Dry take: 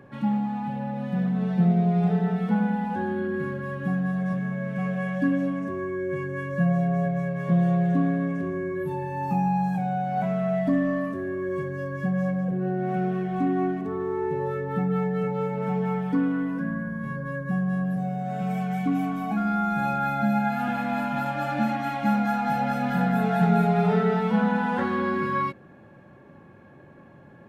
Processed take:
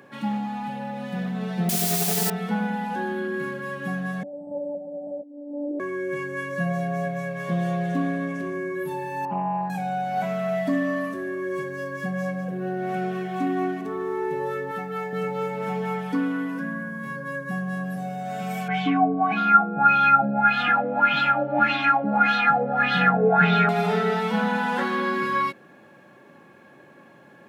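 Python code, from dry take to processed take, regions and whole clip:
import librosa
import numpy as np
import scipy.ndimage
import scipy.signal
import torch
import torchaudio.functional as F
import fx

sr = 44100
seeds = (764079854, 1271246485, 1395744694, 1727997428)

y = fx.chain(x, sr, fx.over_compress(threshold_db=-23.0, ratio=-0.5),
    fx.quant_dither(seeds[0], bits=6, dither='triangular'), at=(1.69, 2.3))
y = fx.chain(y, sr, fx.over_compress(threshold_db=-30.0, ratio=-0.5),
    fx.brickwall_lowpass(high_hz=1000.0),
    fx.lpc_monotone(seeds[1], pitch_hz=290.0, order=10), at=(4.23, 5.8))
y = fx.chain(y, sr, fx.lowpass(hz=1200.0, slope=12),
    fx.low_shelf(hz=150.0, db=-7.0),
    fx.doppler_dist(depth_ms=0.16), at=(9.25, 9.7))
y = fx.chain(y, sr, fx.low_shelf(hz=280.0, db=-11.5),
    fx.notch(hz=3400.0, q=12.0), at=(14.71, 15.13))
y = fx.chain(y, sr, fx.comb(ms=6.5, depth=0.74),
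    fx.filter_lfo_lowpass(shape='sine', hz=1.7, low_hz=480.0, high_hz=3600.0, q=4.7), at=(18.68, 23.69))
y = scipy.signal.sosfilt(scipy.signal.butter(2, 210.0, 'highpass', fs=sr, output='sos'), y)
y = fx.high_shelf(y, sr, hz=2200.0, db=11.5)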